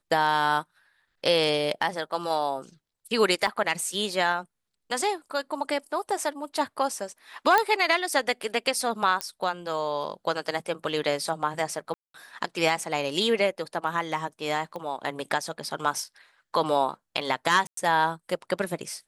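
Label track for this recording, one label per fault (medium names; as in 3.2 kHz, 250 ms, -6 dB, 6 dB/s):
3.470000	3.470000	dropout 4 ms
7.580000	7.580000	pop -8 dBFS
9.210000	9.210000	pop -11 dBFS
11.940000	12.140000	dropout 203 ms
14.760000	14.760000	pop -24 dBFS
17.670000	17.770000	dropout 103 ms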